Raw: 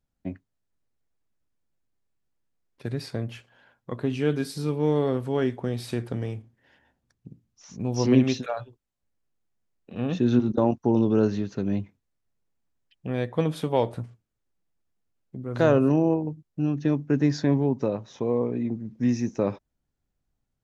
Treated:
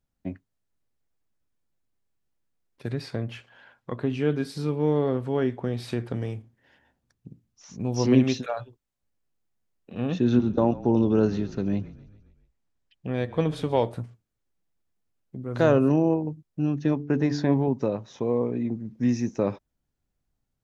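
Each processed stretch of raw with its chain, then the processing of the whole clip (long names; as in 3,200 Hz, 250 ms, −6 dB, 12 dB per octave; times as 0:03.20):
0:02.90–0:06.15: low-pass filter 2,700 Hz 6 dB per octave + one half of a high-frequency compander encoder only
0:10.10–0:13.82: low-pass filter 8,000 Hz + echo with shifted repeats 136 ms, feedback 58%, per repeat −32 Hz, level −18.5 dB
0:16.91–0:17.68: low-pass filter 6,100 Hz + parametric band 800 Hz +4.5 dB 0.91 octaves + hum removal 145.8 Hz, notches 3
whole clip: no processing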